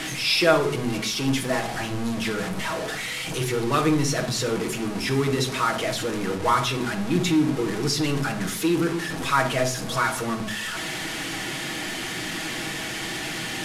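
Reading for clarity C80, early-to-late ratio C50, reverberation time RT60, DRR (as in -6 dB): 15.0 dB, 10.0 dB, 0.50 s, 3.0 dB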